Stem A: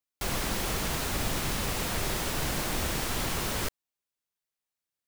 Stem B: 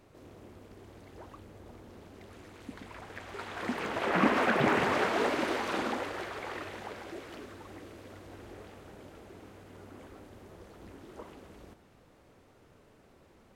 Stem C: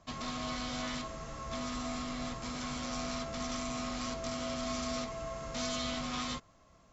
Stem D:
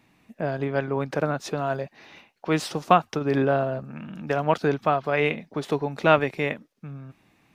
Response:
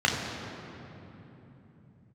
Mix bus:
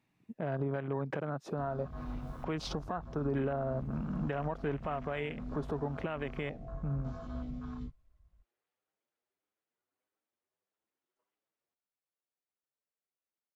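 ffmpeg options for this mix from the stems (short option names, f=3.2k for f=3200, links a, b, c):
-filter_complex "[0:a]asoftclip=type=tanh:threshold=-24.5dB,adelay=1300,volume=-14dB[a];[1:a]highpass=f=1.3k:p=1,asplit=2[b][c];[c]adelay=7.6,afreqshift=1.6[d];[b][d]amix=inputs=2:normalize=1,volume=-15.5dB[e];[2:a]aemphasis=mode=reproduction:type=bsi,flanger=delay=15.5:depth=7.2:speed=0.49,adelay=1500,volume=-6dB[f];[3:a]acompressor=threshold=-28dB:ratio=1.5,volume=0dB,asplit=2[g][h];[h]apad=whole_len=281336[i];[a][i]sidechaincompress=threshold=-55dB:ratio=8:attack=6.1:release=185[j];[f][g]amix=inputs=2:normalize=0,alimiter=level_in=1dB:limit=-24dB:level=0:latency=1:release=186,volume=-1dB,volume=0dB[k];[j][e]amix=inputs=2:normalize=0,alimiter=level_in=20.5dB:limit=-24dB:level=0:latency=1:release=197,volume=-20.5dB,volume=0dB[l];[k][l]amix=inputs=2:normalize=0,afwtdn=0.00708,equalizer=f=140:t=o:w=0.7:g=3"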